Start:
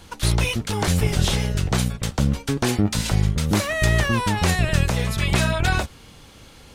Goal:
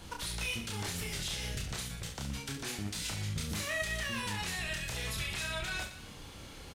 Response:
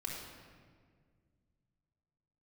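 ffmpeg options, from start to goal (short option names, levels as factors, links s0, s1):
-filter_complex "[0:a]acrossover=split=1600[s0][s1];[s0]acompressor=threshold=0.0316:ratio=5[s2];[s2][s1]amix=inputs=2:normalize=0,alimiter=limit=0.0631:level=0:latency=1:release=221,aecho=1:1:30|69|119.7|185.6|271.3:0.631|0.398|0.251|0.158|0.1,volume=0.596"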